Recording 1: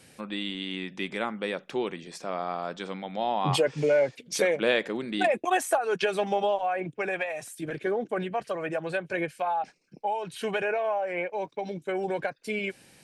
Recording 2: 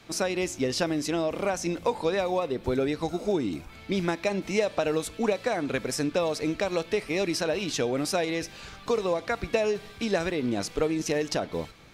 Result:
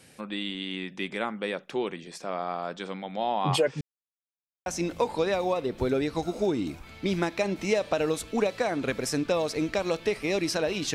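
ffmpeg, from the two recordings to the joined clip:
-filter_complex "[0:a]apad=whole_dur=10.94,atrim=end=10.94,asplit=2[s0][s1];[s0]atrim=end=3.81,asetpts=PTS-STARTPTS,afade=t=out:st=3.806:d=0.004:c=hsin[s2];[s1]atrim=start=3.81:end=4.66,asetpts=PTS-STARTPTS,volume=0[s3];[1:a]atrim=start=1.52:end=7.8,asetpts=PTS-STARTPTS,afade=t=in:d=0.004:c=hsin[s4];[s2][s3][s4]concat=n=3:v=0:a=1"

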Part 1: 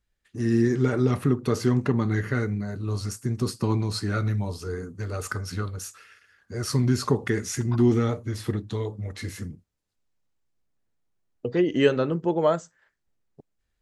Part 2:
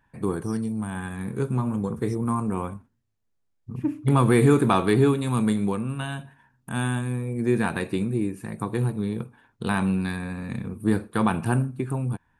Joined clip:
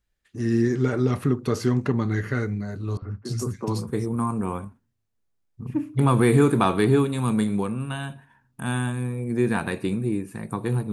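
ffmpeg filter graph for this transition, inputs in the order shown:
-filter_complex "[0:a]asettb=1/sr,asplit=3[s0][s1][s2];[s0]atrim=end=2.974[s3];[s1]atrim=start=2.97:end=3.89,asetpts=PTS-STARTPTS,afade=t=in:d=0.004:c=qsin,afade=t=out:st=0.916:d=0.004:c=qsin,acrossover=split=230|1700[s4][s5][s6];[s4]adelay=50[s7];[s6]adelay=280[s8];[s7][s5][s8]amix=inputs=3:normalize=0,atrim=end_sample=40572[s9];[s2]atrim=start=3.886[s10];[s3][s9]acrossfade=d=0.004:c1=hsin:c2=qsin[s11];[s11][s10]acrossfade=d=0.004:c1=qsin:c2=hsin,apad=whole_dur=10.92,atrim=end=10.92,atrim=end=3.89,asetpts=PTS-STARTPTS[s12];[1:a]atrim=start=1.82:end=9.01,asetpts=PTS-STARTPTS[s13];[s12][s13]acrossfade=d=0.16:c1=tri:c2=tri"

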